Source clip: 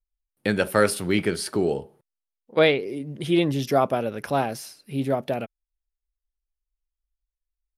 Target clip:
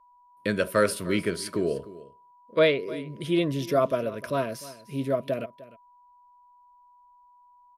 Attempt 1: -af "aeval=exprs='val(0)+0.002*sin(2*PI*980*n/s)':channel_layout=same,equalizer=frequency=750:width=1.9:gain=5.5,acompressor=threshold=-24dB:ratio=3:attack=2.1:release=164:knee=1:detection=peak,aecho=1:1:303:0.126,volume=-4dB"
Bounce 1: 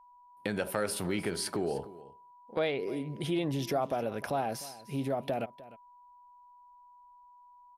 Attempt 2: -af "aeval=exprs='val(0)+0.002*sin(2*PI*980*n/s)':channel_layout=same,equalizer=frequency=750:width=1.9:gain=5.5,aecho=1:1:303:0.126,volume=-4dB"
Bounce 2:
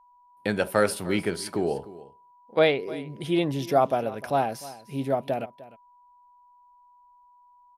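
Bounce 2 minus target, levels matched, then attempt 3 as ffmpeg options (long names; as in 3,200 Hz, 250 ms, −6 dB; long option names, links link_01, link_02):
1,000 Hz band +5.0 dB
-af "aeval=exprs='val(0)+0.002*sin(2*PI*980*n/s)':channel_layout=same,asuperstop=centerf=800:order=12:qfactor=3.3,equalizer=frequency=750:width=1.9:gain=5.5,aecho=1:1:303:0.126,volume=-4dB"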